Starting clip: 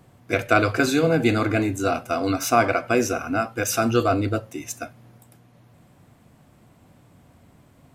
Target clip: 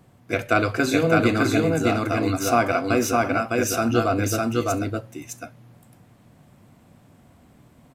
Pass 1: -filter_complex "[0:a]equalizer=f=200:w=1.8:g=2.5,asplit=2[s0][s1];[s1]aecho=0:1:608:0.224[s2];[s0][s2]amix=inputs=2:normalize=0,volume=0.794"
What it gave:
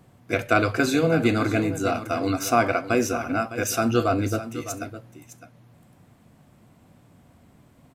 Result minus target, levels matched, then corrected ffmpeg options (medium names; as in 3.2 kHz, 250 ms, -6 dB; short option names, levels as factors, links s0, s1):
echo-to-direct -11 dB
-filter_complex "[0:a]equalizer=f=200:w=1.8:g=2.5,asplit=2[s0][s1];[s1]aecho=0:1:608:0.794[s2];[s0][s2]amix=inputs=2:normalize=0,volume=0.794"